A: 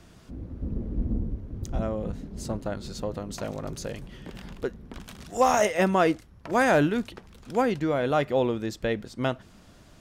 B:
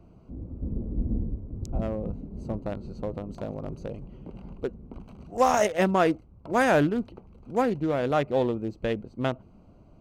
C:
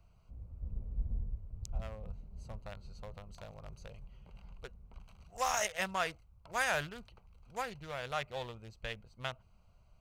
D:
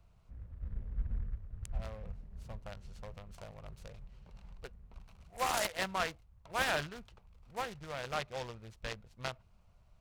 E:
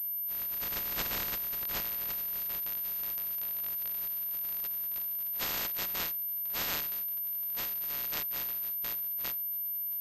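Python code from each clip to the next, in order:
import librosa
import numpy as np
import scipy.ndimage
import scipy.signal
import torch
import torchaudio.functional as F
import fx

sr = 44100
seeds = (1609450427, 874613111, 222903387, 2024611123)

y1 = fx.wiener(x, sr, points=25)
y2 = fx.tone_stack(y1, sr, knobs='10-0-10')
y3 = fx.noise_mod_delay(y2, sr, seeds[0], noise_hz=1300.0, depth_ms=0.05)
y4 = fx.spec_flatten(y3, sr, power=0.12)
y4 = fx.pwm(y4, sr, carrier_hz=13000.0)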